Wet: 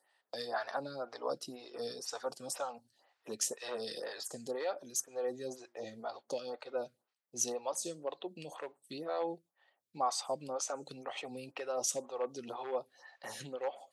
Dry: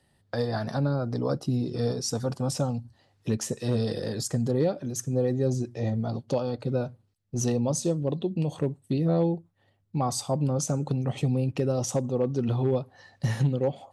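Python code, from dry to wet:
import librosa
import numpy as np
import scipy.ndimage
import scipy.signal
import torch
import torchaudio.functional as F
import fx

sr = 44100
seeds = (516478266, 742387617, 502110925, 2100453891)

y = scipy.signal.sosfilt(scipy.signal.butter(2, 750.0, 'highpass', fs=sr, output='sos'), x)
y = fx.stagger_phaser(y, sr, hz=2.0)
y = F.gain(torch.from_numpy(y), 1.0).numpy()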